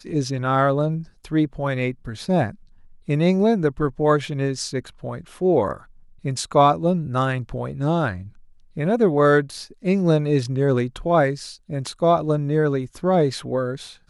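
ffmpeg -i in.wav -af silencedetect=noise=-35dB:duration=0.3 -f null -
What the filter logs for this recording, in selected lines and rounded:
silence_start: 2.54
silence_end: 3.08 | silence_duration: 0.54
silence_start: 5.80
silence_end: 6.24 | silence_duration: 0.44
silence_start: 8.29
silence_end: 8.76 | silence_duration: 0.48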